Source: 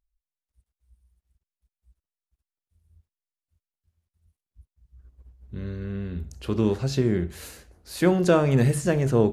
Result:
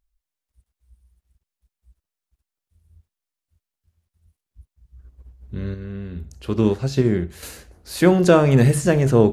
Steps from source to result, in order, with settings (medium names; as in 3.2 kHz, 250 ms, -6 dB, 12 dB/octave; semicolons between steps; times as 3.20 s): 5.74–7.43 s: upward expansion 1.5:1, over -30 dBFS; trim +5.5 dB